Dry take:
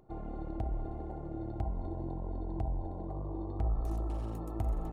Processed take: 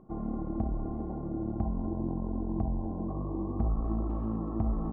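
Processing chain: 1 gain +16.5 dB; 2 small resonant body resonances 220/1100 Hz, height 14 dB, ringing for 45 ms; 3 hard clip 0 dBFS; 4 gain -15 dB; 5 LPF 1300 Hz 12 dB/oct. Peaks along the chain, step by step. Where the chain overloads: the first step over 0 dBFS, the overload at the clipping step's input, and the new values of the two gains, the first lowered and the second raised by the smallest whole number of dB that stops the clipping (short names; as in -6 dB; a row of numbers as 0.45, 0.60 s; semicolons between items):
-6.0, -2.0, -2.0, -17.0, -17.0 dBFS; no overload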